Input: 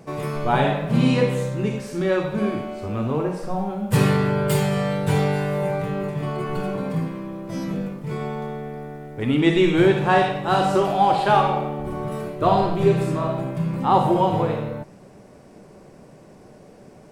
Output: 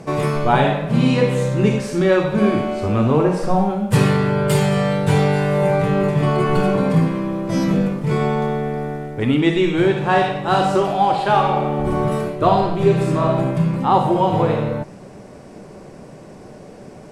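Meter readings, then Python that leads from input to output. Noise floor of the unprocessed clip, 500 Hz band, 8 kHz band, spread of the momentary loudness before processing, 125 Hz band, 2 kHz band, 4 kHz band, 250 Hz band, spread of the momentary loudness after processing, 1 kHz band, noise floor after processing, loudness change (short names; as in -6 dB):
-47 dBFS, +4.0 dB, +3.5 dB, 12 LU, +5.0 dB, +3.5 dB, +3.0 dB, +4.5 dB, 5 LU, +3.0 dB, -40 dBFS, +4.0 dB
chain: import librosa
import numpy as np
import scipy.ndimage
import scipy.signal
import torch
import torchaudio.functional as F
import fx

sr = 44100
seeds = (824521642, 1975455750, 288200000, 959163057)

y = scipy.signal.sosfilt(scipy.signal.butter(2, 11000.0, 'lowpass', fs=sr, output='sos'), x)
y = fx.rider(y, sr, range_db=5, speed_s=0.5)
y = F.gain(torch.from_numpy(y), 4.5).numpy()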